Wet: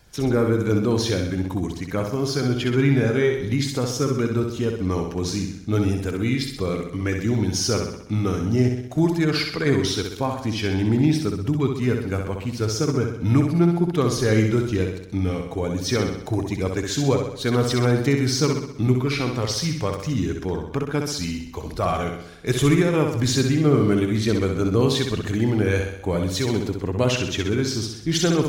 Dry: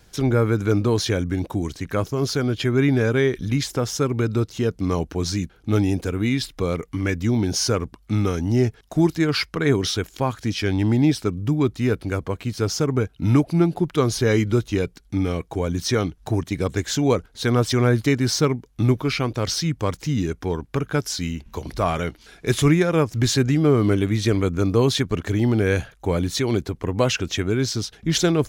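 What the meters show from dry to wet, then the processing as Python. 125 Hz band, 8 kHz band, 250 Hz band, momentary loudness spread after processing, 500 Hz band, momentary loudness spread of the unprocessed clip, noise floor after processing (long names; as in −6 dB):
−0.5 dB, −0.5 dB, 0.0 dB, 7 LU, −0.5 dB, 7 LU, −36 dBFS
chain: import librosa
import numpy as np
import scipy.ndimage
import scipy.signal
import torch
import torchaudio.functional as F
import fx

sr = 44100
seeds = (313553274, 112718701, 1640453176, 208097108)

y = fx.spec_quant(x, sr, step_db=15)
y = fx.room_flutter(y, sr, wall_m=11.0, rt60_s=0.72)
y = F.gain(torch.from_numpy(y), -1.5).numpy()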